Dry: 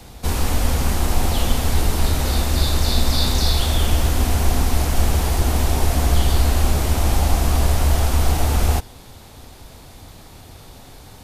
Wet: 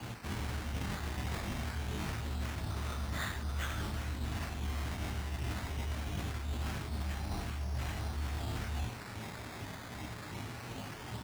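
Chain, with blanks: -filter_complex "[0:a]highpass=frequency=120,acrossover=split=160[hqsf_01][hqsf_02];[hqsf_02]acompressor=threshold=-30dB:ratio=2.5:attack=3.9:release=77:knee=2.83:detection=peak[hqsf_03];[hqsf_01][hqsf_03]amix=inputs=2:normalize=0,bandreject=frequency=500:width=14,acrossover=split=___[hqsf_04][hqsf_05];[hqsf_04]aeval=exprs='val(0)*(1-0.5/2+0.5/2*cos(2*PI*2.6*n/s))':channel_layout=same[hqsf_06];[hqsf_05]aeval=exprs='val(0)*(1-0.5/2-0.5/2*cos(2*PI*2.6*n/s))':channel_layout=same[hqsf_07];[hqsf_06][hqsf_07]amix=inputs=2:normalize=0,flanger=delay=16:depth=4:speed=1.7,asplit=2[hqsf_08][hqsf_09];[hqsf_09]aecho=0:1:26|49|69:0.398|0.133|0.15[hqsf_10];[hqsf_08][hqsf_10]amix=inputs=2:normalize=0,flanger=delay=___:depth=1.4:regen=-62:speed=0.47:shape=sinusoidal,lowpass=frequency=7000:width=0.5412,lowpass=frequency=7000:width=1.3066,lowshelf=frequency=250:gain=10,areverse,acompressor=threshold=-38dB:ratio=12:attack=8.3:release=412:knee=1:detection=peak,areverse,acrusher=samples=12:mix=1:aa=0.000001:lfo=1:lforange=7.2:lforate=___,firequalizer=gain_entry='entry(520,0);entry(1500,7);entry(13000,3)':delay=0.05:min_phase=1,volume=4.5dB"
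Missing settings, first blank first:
1500, 8.9, 0.23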